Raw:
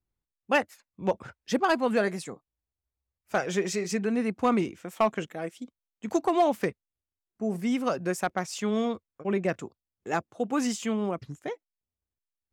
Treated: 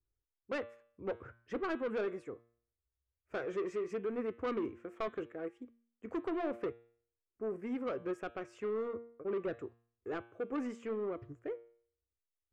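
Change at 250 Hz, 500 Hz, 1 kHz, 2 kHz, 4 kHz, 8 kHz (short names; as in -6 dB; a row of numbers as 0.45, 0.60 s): -12.0 dB, -8.0 dB, -15.5 dB, -13.5 dB, -17.5 dB, under -25 dB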